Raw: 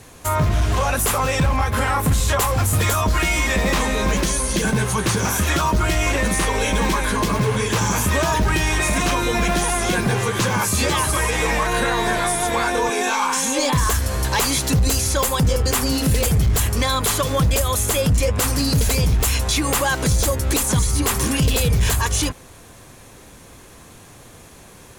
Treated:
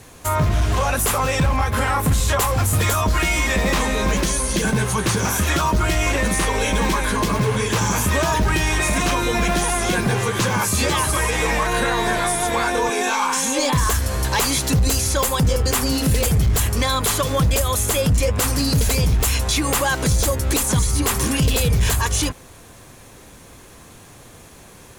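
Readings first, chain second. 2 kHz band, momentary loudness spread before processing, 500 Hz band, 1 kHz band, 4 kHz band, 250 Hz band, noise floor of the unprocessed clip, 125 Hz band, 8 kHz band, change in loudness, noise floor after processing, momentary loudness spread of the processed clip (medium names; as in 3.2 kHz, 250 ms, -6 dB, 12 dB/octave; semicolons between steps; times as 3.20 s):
0.0 dB, 2 LU, 0.0 dB, 0.0 dB, 0.0 dB, 0.0 dB, -44 dBFS, 0.0 dB, 0.0 dB, 0.0 dB, -44 dBFS, 2 LU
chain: bit crusher 10-bit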